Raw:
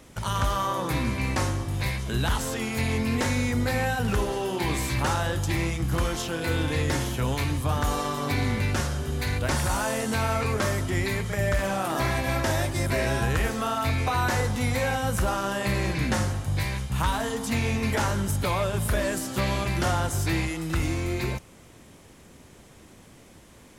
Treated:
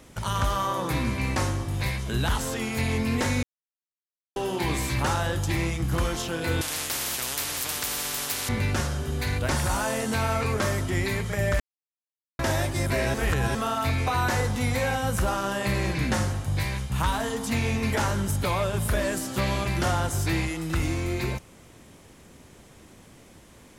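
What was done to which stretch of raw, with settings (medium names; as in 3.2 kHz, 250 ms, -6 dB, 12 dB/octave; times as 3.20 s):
3.43–4.36 s: mute
6.61–8.49 s: spectrum-flattening compressor 10:1
11.60–12.39 s: mute
13.14–13.55 s: reverse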